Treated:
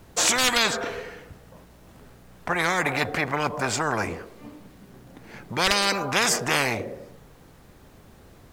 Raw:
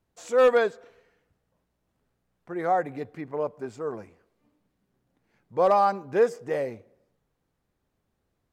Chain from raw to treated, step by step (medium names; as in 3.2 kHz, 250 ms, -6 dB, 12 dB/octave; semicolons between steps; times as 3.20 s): spectrum-flattening compressor 10:1; trim +8 dB